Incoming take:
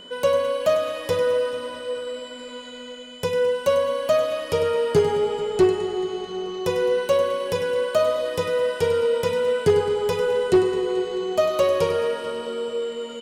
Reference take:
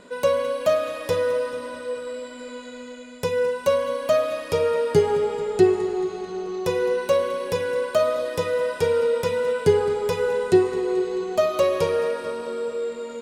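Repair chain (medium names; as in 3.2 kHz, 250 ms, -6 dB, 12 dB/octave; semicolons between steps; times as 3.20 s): clip repair -10.5 dBFS; band-stop 3 kHz, Q 30; inverse comb 99 ms -11 dB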